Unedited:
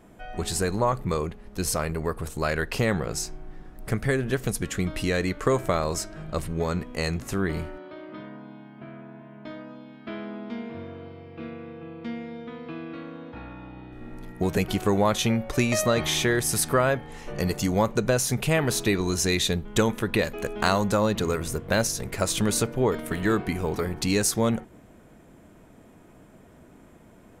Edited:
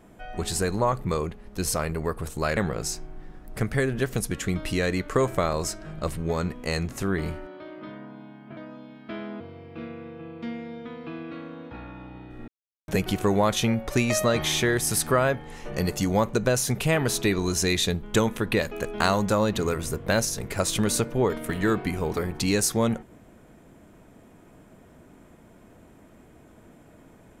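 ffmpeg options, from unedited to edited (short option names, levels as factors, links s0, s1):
-filter_complex "[0:a]asplit=6[s0][s1][s2][s3][s4][s5];[s0]atrim=end=2.572[s6];[s1]atrim=start=2.878:end=8.882[s7];[s2]atrim=start=9.548:end=10.382[s8];[s3]atrim=start=11.018:end=14.1,asetpts=PTS-STARTPTS,afade=t=out:st=3.078:d=0.004:c=hsin[s9];[s4]atrim=start=14.1:end=14.5,asetpts=PTS-STARTPTS,volume=0[s10];[s5]atrim=start=14.5,asetpts=PTS-STARTPTS,afade=t=in:d=0.004:c=hsin[s11];[s6][s7]acrossfade=d=0.004:c1=hsin:c2=hsin[s12];[s12][s8]acrossfade=d=0.004:c1=hsin:c2=hsin[s13];[s9][s10][s11]concat=n=3:v=0:a=1[s14];[s13][s14]acrossfade=d=0.004:c1=hsin:c2=hsin"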